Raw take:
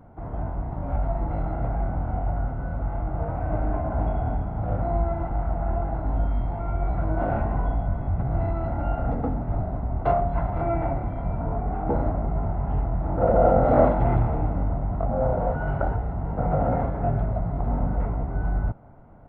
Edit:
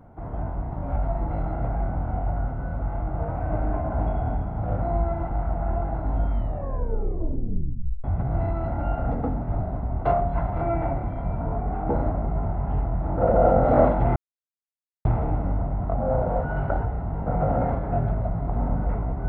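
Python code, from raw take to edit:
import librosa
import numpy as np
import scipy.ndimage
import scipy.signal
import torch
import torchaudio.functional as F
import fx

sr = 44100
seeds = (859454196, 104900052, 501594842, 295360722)

y = fx.edit(x, sr, fx.tape_stop(start_s=6.32, length_s=1.72),
    fx.insert_silence(at_s=14.16, length_s=0.89), tone=tone)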